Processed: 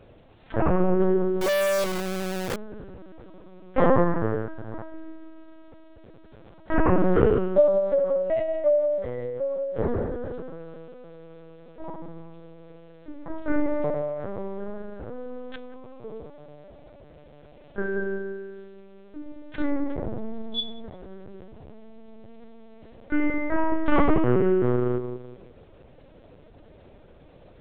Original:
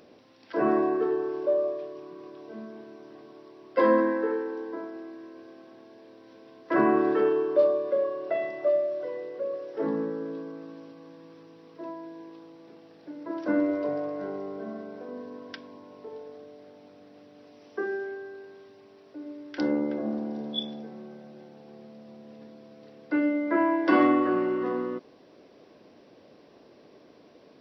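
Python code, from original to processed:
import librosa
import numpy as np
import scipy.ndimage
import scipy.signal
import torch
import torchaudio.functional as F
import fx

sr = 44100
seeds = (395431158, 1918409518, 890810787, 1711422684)

y = fx.echo_wet_lowpass(x, sr, ms=178, feedback_pct=34, hz=1000.0, wet_db=-6.0)
y = fx.lpc_vocoder(y, sr, seeds[0], excitation='pitch_kept', order=8)
y = fx.quant_companded(y, sr, bits=2, at=(1.41, 2.56))
y = y * 10.0 ** (3.0 / 20.0)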